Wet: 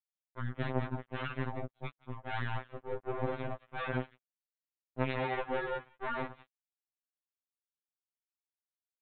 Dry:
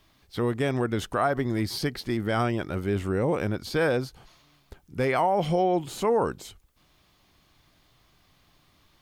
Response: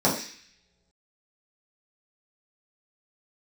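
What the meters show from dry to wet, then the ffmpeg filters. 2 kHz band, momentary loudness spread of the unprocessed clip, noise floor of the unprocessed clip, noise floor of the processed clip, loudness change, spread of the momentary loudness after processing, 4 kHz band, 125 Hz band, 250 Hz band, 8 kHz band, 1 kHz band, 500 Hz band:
−7.0 dB, 7 LU, −64 dBFS, below −85 dBFS, −11.5 dB, 10 LU, −12.5 dB, −9.0 dB, −13.5 dB, below −35 dB, −11.0 dB, −13.0 dB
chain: -af "afwtdn=0.0158,tiltshelf=frequency=700:gain=3.5,aecho=1:1:178:0.531,aresample=8000,acrusher=bits=2:mix=0:aa=0.5,aresample=44100,afftfilt=real='re*2.45*eq(mod(b,6),0)':imag='im*2.45*eq(mod(b,6),0)':win_size=2048:overlap=0.75,volume=-8.5dB"

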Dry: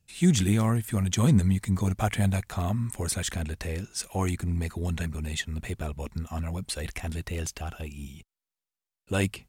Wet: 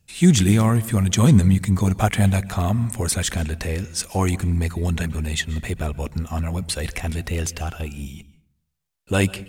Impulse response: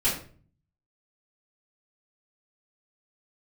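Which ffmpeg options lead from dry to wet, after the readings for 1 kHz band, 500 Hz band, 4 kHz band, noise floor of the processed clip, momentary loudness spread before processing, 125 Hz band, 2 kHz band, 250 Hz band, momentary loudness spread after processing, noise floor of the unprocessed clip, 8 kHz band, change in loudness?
+7.0 dB, +7.0 dB, +7.0 dB, −70 dBFS, 12 LU, +7.0 dB, +7.0 dB, +7.0 dB, 12 LU, below −85 dBFS, +7.0 dB, +7.0 dB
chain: -filter_complex "[0:a]asplit=2[link_01][link_02];[1:a]atrim=start_sample=2205,adelay=122[link_03];[link_02][link_03]afir=irnorm=-1:irlink=0,volume=-30dB[link_04];[link_01][link_04]amix=inputs=2:normalize=0,volume=7dB"

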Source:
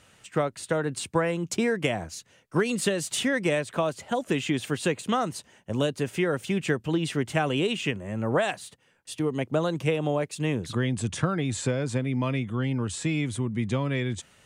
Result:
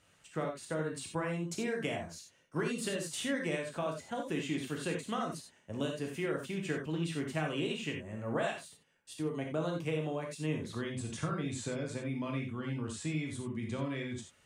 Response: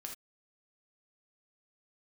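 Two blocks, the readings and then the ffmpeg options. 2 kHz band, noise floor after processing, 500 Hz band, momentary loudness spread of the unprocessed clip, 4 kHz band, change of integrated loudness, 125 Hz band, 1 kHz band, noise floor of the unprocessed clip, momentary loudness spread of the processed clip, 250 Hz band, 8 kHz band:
−9.0 dB, −67 dBFS, −9.5 dB, 5 LU, −9.0 dB, −9.0 dB, −9.5 dB, −9.5 dB, −61 dBFS, 5 LU, −8.5 dB, −9.0 dB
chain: -filter_complex "[1:a]atrim=start_sample=2205,asetrate=39690,aresample=44100[link_01];[0:a][link_01]afir=irnorm=-1:irlink=0,volume=-6.5dB"

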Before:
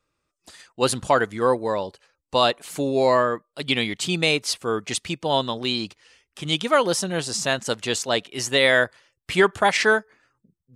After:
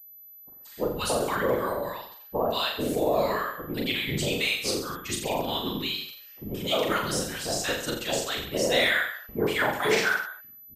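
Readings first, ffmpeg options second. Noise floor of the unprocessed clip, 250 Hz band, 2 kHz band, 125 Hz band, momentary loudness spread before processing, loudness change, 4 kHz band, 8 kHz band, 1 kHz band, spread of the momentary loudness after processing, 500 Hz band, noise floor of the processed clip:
−81 dBFS, −4.0 dB, −4.0 dB, −4.0 dB, 9 LU, −5.0 dB, −4.0 dB, −4.0 dB, −6.0 dB, 13 LU, −5.0 dB, −49 dBFS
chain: -filter_complex "[0:a]acrossover=split=920[link_01][link_02];[link_02]adelay=180[link_03];[link_01][link_03]amix=inputs=2:normalize=0,afftfilt=real='hypot(re,im)*cos(2*PI*random(0))':imag='hypot(re,im)*sin(2*PI*random(1))':win_size=512:overlap=0.75,asplit=2[link_04][link_05];[link_05]aecho=0:1:40|84|132.4|185.6|244.2:0.631|0.398|0.251|0.158|0.1[link_06];[link_04][link_06]amix=inputs=2:normalize=0,aeval=exprs='val(0)+0.00501*sin(2*PI*12000*n/s)':channel_layout=same"

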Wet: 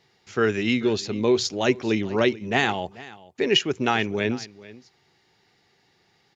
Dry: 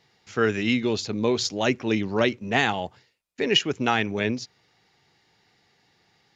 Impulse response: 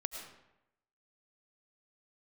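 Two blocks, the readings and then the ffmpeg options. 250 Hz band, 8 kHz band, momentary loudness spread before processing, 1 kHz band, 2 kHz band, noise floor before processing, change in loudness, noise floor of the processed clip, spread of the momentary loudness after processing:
+1.0 dB, can't be measured, 10 LU, 0.0 dB, 0.0 dB, −66 dBFS, +1.0 dB, −65 dBFS, 11 LU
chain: -filter_complex "[0:a]equalizer=frequency=380:width=8:gain=6,asplit=2[link_01][link_02];[link_02]aecho=0:1:438:0.106[link_03];[link_01][link_03]amix=inputs=2:normalize=0"

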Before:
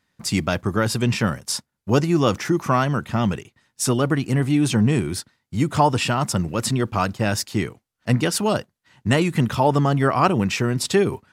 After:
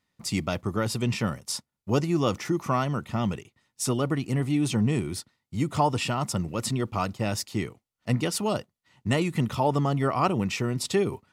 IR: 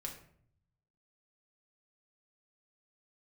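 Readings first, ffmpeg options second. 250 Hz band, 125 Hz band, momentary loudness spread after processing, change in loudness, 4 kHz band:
−6.0 dB, −6.0 dB, 8 LU, −6.0 dB, −6.0 dB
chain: -af "bandreject=frequency=1600:width=5.8,volume=-6dB"

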